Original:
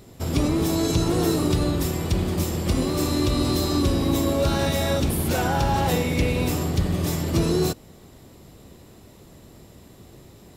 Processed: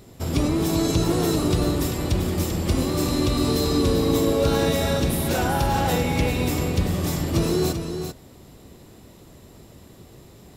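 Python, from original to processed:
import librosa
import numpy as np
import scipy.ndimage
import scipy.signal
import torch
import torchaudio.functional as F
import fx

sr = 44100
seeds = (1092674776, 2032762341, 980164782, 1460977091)

y = fx.dmg_tone(x, sr, hz=450.0, level_db=-26.0, at=(3.47, 4.72), fade=0.02)
y = y + 10.0 ** (-8.0 / 20.0) * np.pad(y, (int(391 * sr / 1000.0), 0))[:len(y)]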